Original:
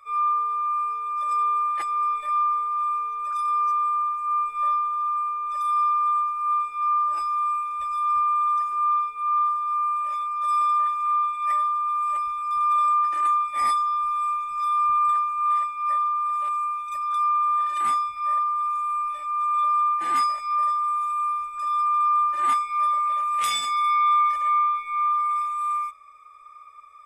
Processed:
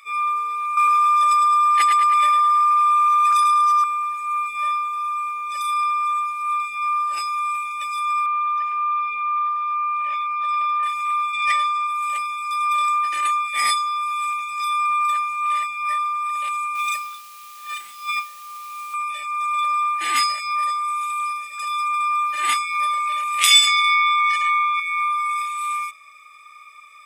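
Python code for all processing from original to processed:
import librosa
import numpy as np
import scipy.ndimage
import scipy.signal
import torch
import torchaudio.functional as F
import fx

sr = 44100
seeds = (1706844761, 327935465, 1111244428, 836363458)

y = fx.chain(x, sr, fx.echo_feedback(ms=106, feedback_pct=58, wet_db=-4),
    fx.env_flatten(amount_pct=100), at=(0.77, 3.84))
y = fx.chain(y, sr, fx.bandpass_edges(low_hz=180.0, high_hz=2300.0),
    fx.low_shelf(hz=400.0, db=-4.5),
    fx.env_flatten(amount_pct=50), at=(8.26, 10.83))
y = fx.chain(y, sr, fx.lowpass(hz=5100.0, slope=12),
    fx.high_shelf(hz=2500.0, db=10.5), at=(11.33, 11.87))
y = fx.chain(y, sr, fx.highpass(hz=42.0, slope=12),
    fx.over_compress(threshold_db=-31.0, ratio=-0.5),
    fx.quant_dither(seeds[0], bits=10, dither='triangular'), at=(16.75, 18.94))
y = fx.chain(y, sr, fx.steep_highpass(hz=240.0, slope=36),
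    fx.echo_single(ms=833, db=-12.5), at=(20.42, 22.56))
y = fx.chain(y, sr, fx.bandpass_edges(low_hz=750.0, high_hz=7600.0),
    fx.env_flatten(amount_pct=50), at=(23.67, 24.8))
y = fx.highpass(y, sr, hz=340.0, slope=6)
y = fx.high_shelf_res(y, sr, hz=1700.0, db=11.0, q=1.5)
y = y * librosa.db_to_amplitude(2.5)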